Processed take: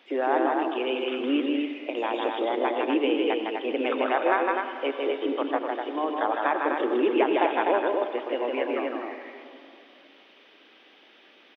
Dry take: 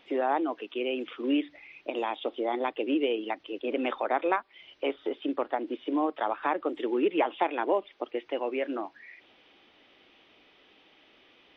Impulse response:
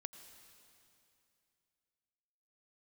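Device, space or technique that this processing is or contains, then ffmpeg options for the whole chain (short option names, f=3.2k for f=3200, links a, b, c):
stadium PA: -filter_complex "[0:a]asettb=1/sr,asplit=3[a][b][c];[a]atrim=end=5.384[d];[b]atrim=start=5.38:end=6.09,asetpts=PTS-STARTPTS,afade=t=in:d=0.004:c=qsin,afade=t=out:st=0.706:d=0.004:c=qsin,highpass=410[e];[c]atrim=start=6.086[f];[d][e]acrossfade=d=0.004:c1=hsin:c2=qsin[g];[g][f]acrossfade=d=0.004:c1=qsin:c2=hsin,highpass=f=220:w=0.5412,highpass=f=220:w=1.3066,equalizer=f=1.6k:t=o:w=0.28:g=4,aecho=1:1:157.4|250.7:0.708|0.562[h];[1:a]atrim=start_sample=2205[i];[h][i]afir=irnorm=-1:irlink=0,volume=6dB"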